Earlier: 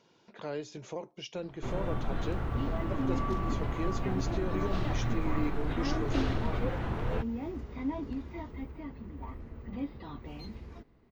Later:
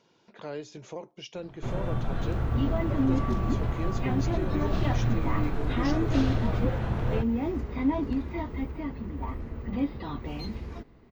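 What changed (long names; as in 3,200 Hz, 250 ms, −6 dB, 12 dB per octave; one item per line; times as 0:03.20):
second sound +8.0 dB
reverb: on, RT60 0.70 s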